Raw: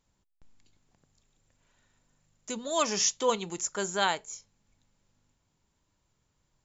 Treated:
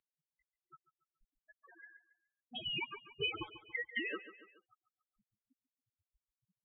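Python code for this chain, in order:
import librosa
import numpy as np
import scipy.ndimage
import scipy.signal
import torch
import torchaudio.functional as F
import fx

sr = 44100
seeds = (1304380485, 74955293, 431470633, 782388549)

y = fx.block_float(x, sr, bits=3)
y = fx.highpass(y, sr, hz=1100.0, slope=6)
y = fx.tilt_shelf(y, sr, db=-7.0, hz=1400.0)
y = fx.transient(y, sr, attack_db=-5, sustain_db=0)
y = fx.over_compress(y, sr, threshold_db=-32.0, ratio=-1.0)
y = fx.spec_topn(y, sr, count=8)
y = fx.air_absorb(y, sr, metres=230.0)
y = fx.echo_feedback(y, sr, ms=141, feedback_pct=36, wet_db=-16.5)
y = fx.freq_invert(y, sr, carrier_hz=3500)
y = fx.band_squash(y, sr, depth_pct=70)
y = y * librosa.db_to_amplitude(6.0)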